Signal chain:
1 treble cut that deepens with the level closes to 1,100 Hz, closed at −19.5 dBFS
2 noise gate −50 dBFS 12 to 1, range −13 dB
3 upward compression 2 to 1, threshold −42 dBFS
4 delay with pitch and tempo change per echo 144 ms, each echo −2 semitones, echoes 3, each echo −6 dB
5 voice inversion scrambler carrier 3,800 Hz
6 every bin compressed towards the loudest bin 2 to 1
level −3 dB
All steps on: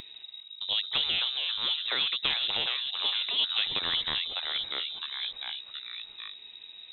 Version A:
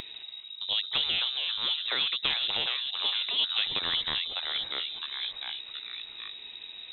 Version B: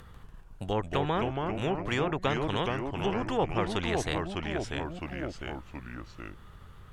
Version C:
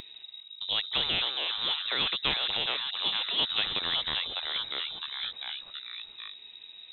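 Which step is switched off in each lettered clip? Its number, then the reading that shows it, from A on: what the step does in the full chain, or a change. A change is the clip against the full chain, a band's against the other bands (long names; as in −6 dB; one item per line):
2, change in momentary loudness spread −2 LU
5, 4 kHz band −32.0 dB
1, 4 kHz band −4.5 dB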